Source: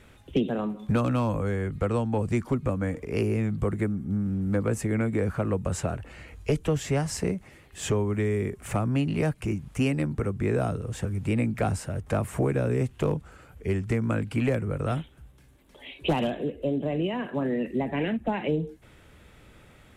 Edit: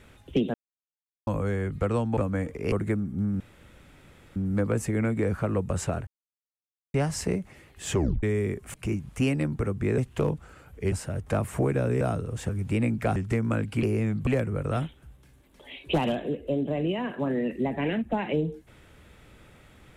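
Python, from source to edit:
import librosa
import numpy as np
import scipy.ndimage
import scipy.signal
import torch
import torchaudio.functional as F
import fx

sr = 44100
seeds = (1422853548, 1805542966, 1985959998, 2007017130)

y = fx.edit(x, sr, fx.silence(start_s=0.54, length_s=0.73),
    fx.cut(start_s=2.17, length_s=0.48),
    fx.move(start_s=3.2, length_s=0.44, to_s=14.42),
    fx.insert_room_tone(at_s=4.32, length_s=0.96),
    fx.silence(start_s=6.03, length_s=0.87),
    fx.tape_stop(start_s=7.91, length_s=0.28),
    fx.cut(start_s=8.7, length_s=0.63),
    fx.swap(start_s=10.57, length_s=1.15, other_s=12.81, other_length_s=0.94), tone=tone)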